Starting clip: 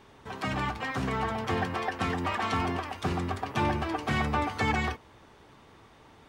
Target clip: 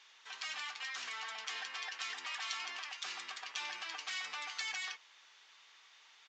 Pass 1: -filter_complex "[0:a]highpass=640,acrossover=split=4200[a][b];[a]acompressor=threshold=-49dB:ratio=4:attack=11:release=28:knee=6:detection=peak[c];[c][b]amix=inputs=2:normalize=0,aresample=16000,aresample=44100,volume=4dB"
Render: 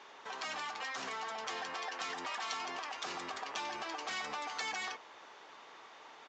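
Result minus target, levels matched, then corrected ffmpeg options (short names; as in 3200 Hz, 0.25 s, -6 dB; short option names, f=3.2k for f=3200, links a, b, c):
500 Hz band +13.5 dB
-filter_complex "[0:a]highpass=2.5k,acrossover=split=4200[a][b];[a]acompressor=threshold=-49dB:ratio=4:attack=11:release=28:knee=6:detection=peak[c];[c][b]amix=inputs=2:normalize=0,aresample=16000,aresample=44100,volume=4dB"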